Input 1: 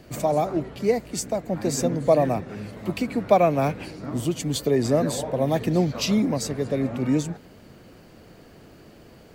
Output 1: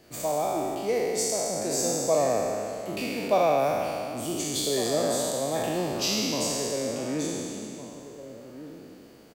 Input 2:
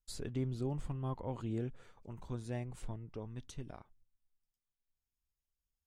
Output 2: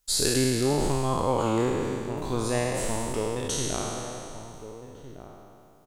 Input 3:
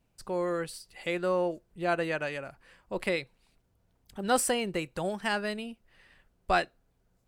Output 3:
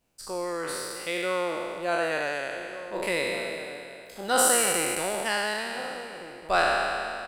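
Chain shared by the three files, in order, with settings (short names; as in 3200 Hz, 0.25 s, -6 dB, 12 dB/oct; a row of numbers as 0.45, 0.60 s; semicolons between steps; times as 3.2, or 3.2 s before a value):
spectral trails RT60 2.46 s; tone controls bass -8 dB, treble +5 dB; outdoor echo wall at 250 m, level -12 dB; match loudness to -27 LUFS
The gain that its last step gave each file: -7.5, +14.5, -1.0 dB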